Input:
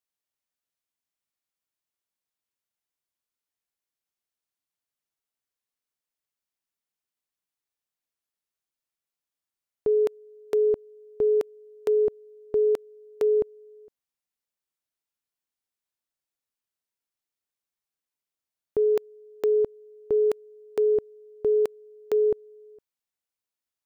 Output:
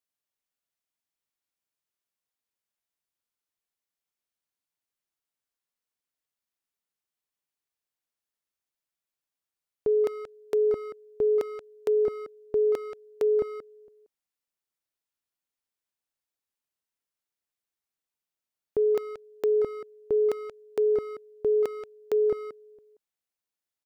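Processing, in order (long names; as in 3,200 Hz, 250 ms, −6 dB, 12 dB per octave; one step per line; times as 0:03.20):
far-end echo of a speakerphone 180 ms, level −7 dB
level −1.5 dB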